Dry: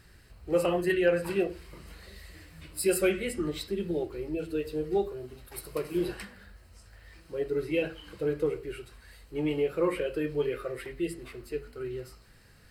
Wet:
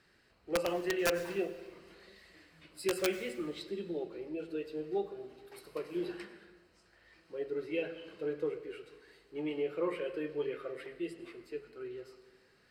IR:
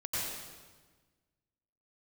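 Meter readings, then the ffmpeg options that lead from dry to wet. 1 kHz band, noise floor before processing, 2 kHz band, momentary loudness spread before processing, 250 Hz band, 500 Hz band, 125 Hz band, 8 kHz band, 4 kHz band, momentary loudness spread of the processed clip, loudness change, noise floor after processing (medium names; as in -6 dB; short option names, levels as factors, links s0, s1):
-4.5 dB, -56 dBFS, -5.0 dB, 20 LU, -7.0 dB, -6.5 dB, -12.5 dB, -7.5 dB, -3.0 dB, 18 LU, -6.5 dB, -67 dBFS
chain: -filter_complex "[0:a]acrossover=split=180 6300:gain=0.126 1 0.224[s0][s1][s2];[s0][s1][s2]amix=inputs=3:normalize=0,aeval=exprs='(mod(6.31*val(0)+1,2)-1)/6.31':c=same,asplit=2[s3][s4];[1:a]atrim=start_sample=2205[s5];[s4][s5]afir=irnorm=-1:irlink=0,volume=0.15[s6];[s3][s6]amix=inputs=2:normalize=0,volume=0.447"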